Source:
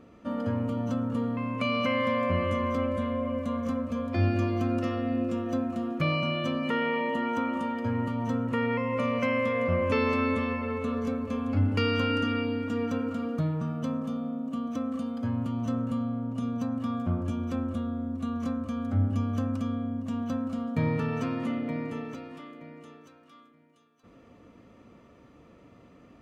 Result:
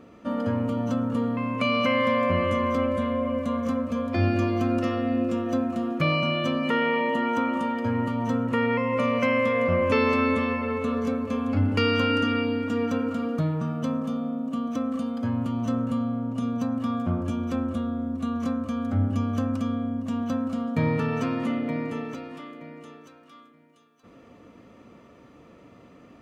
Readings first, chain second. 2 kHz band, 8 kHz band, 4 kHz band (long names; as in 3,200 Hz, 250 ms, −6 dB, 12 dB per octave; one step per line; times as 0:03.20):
+4.5 dB, can't be measured, +4.5 dB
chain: low-shelf EQ 88 Hz −8 dB
level +4.5 dB